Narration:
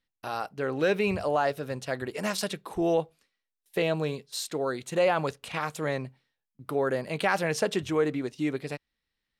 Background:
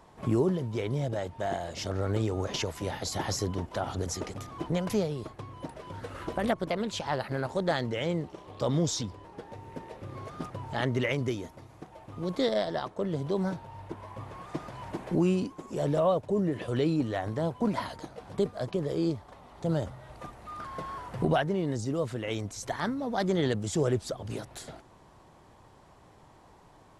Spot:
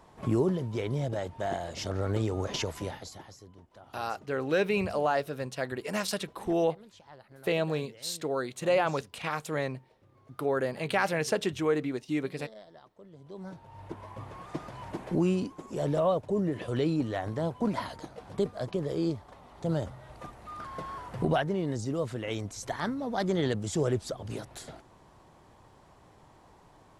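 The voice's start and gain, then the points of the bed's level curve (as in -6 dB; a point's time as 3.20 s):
3.70 s, -1.5 dB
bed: 2.81 s -0.5 dB
3.35 s -21 dB
13.12 s -21 dB
13.86 s -1 dB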